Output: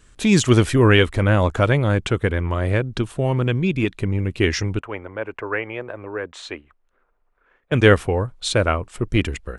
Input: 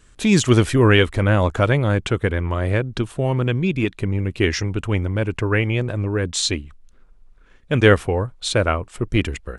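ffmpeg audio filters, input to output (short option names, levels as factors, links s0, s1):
-filter_complex "[0:a]asettb=1/sr,asplit=3[s0][s1][s2];[s0]atrim=end=4.794[s3];[s1]atrim=start=4.79:end=7.72,asetpts=PTS-STARTPTS,afade=t=in:d=0.004:c=qsin,afade=t=out:st=2.926:d=0.004:c=qsin,acrossover=split=400 2300:gain=0.1 1 0.0891[s4][s5][s6];[s4][s5][s6]amix=inputs=3:normalize=0[s7];[s2]atrim=start=7.716[s8];[s3][s7]acrossfade=d=0.004:c1=hsin:c2=qsin[s9];[s9][s8]acrossfade=d=0.004:c1=qsin:c2=hsin"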